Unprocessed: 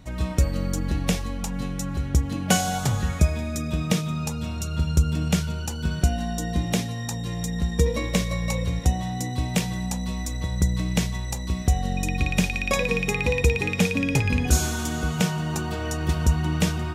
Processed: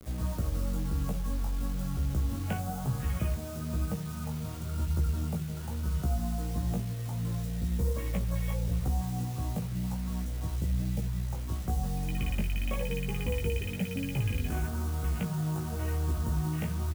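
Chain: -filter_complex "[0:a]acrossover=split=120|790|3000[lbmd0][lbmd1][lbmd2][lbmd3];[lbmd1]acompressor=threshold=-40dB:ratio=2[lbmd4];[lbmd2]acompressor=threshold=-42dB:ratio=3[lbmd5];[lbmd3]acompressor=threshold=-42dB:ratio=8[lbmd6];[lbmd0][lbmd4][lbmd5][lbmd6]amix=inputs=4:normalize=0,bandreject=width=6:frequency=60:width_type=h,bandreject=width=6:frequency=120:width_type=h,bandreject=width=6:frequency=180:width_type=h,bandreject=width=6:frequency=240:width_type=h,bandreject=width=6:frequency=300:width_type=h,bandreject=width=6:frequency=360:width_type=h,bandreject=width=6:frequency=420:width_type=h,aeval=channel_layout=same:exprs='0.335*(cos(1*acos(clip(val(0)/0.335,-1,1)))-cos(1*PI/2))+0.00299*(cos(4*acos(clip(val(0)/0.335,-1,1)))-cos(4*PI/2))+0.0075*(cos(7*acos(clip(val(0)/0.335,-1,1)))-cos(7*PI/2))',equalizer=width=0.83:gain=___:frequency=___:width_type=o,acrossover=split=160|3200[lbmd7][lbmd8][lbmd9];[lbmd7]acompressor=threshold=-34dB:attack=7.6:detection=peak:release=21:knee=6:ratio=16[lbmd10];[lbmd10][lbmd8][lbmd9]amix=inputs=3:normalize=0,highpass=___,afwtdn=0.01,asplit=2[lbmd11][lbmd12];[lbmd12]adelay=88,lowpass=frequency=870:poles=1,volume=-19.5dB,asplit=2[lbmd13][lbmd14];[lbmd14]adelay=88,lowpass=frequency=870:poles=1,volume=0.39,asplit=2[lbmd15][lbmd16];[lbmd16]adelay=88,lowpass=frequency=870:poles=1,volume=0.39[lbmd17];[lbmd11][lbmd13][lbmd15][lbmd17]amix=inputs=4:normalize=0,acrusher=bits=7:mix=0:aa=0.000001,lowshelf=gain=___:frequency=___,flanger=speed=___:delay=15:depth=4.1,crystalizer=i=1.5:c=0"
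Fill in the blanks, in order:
-5, 4.8k, 41, 8.5, 170, 1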